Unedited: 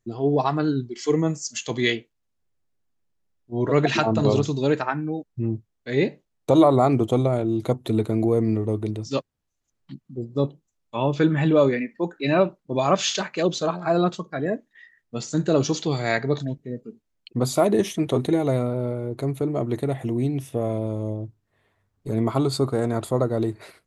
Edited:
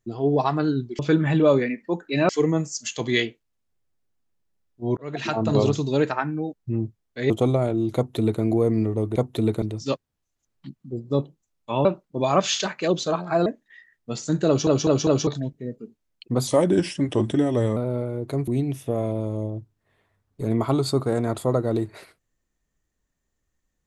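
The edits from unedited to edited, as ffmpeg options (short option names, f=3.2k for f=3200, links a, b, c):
-filter_complex "[0:a]asplit=16[a][b][c][d][e][f][g][h][i][j][k][l][m][n][o][p];[a]atrim=end=0.992[q];[b]atrim=start=11.098:end=12.402[r];[c]atrim=start=0.988:end=3.67,asetpts=PTS-STARTPTS,afade=t=out:st=2.678:d=0.004:c=hsin[s];[d]atrim=start=3.67:end=6.002,asetpts=PTS-STARTPTS,afade=t=in:d=0.58[t];[e]atrim=start=7.008:end=8.872[u];[f]atrim=start=7.668:end=8.132[v];[g]atrim=start=8.868:end=11.102[w];[h]atrim=start=12.398:end=14.012[x];[i]atrim=start=14.508:end=15.722[y];[j]atrim=start=15.518:end=15.722[z];[k]atrim=start=15.518:end=15.722[aa];[l]atrim=start=15.518:end=15.722[ab];[m]atrim=start=16.318:end=17.524[ac];[n]atrim=start=17.52:end=18.66,asetpts=PTS-STARTPTS,asetrate=38808,aresample=44100[ad];[o]atrim=start=18.656:end=19.372[ae];[p]atrim=start=20.138[af];[q][r]acrossfade=d=0.004:c1=hsin:c2=hsin[ag];[s][t]concat=n=2:v=0:a=1[ah];[ag][ah]acrossfade=d=0.004:c1=hsin:c2=hsin[ai];[ai][u]acrossfade=d=0.004:c1=hsin:c2=hsin[aj];[aj][v]acrossfade=d=0.004:c1=hsin:c2=hsin[ak];[ak][w]acrossfade=d=0.004:c1=hsin:c2=hsin[al];[al][x]acrossfade=d=0.004:c1=hsin:c2=hsin[am];[am][y]acrossfade=d=0.004:c1=hsin:c2=hsin[an];[an][z]acrossfade=d=0.004:c1=hsin:c2=hsin[ao];[ao][aa]acrossfade=d=0.004:c1=hsin:c2=hsin[ap];[ap][ab]acrossfade=d=0.004:c1=hsin:c2=hsin[aq];[aq][ac]acrossfade=d=0.004:c1=hsin:c2=hsin[ar];[ar][ad]acrossfade=d=0.004:c1=hsin:c2=hsin[as];[as][ae]acrossfade=d=0.004:c1=hsin:c2=hsin[at];[at][af]acrossfade=d=0.004:c1=hsin:c2=hsin"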